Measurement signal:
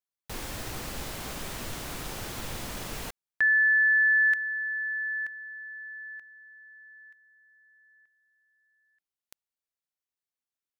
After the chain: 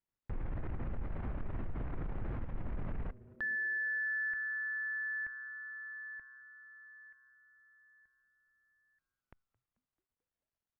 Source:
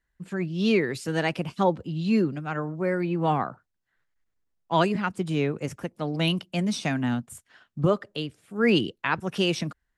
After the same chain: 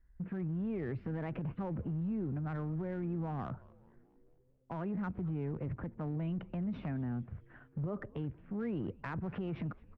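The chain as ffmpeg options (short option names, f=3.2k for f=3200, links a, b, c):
-filter_complex "[0:a]lowpass=f=2.1k:w=0.5412,lowpass=f=2.1k:w=1.3066,aemphasis=mode=reproduction:type=riaa,acompressor=threshold=-32dB:ratio=10:attack=0.38:release=36:knee=6:detection=peak,asplit=2[a][b];[b]asplit=5[c][d][e][f][g];[c]adelay=219,afreqshift=-130,volume=-22dB[h];[d]adelay=438,afreqshift=-260,volume=-26.3dB[i];[e]adelay=657,afreqshift=-390,volume=-30.6dB[j];[f]adelay=876,afreqshift=-520,volume=-34.9dB[k];[g]adelay=1095,afreqshift=-650,volume=-39.2dB[l];[h][i][j][k][l]amix=inputs=5:normalize=0[m];[a][m]amix=inputs=2:normalize=0,volume=-1.5dB" -ar 48000 -c:a libopus -b:a 64k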